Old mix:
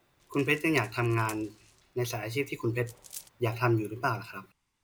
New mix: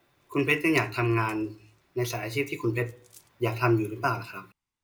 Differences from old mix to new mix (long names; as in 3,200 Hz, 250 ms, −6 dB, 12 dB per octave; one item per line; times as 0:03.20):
speech: send +11.5 dB
background −10.0 dB